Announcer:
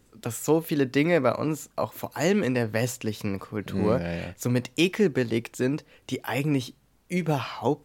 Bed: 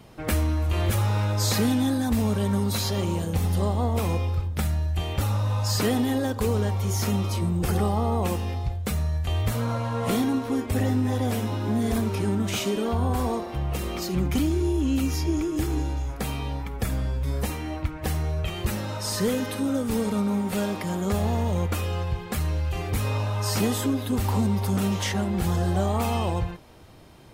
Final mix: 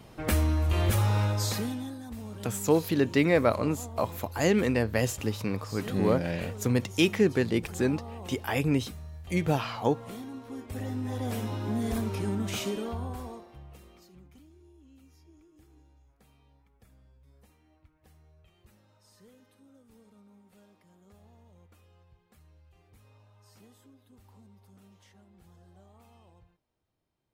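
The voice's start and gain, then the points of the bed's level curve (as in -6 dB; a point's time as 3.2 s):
2.20 s, -1.0 dB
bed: 1.25 s -1.5 dB
2 s -17 dB
10.29 s -17 dB
11.41 s -5.5 dB
12.67 s -5.5 dB
14.45 s -33 dB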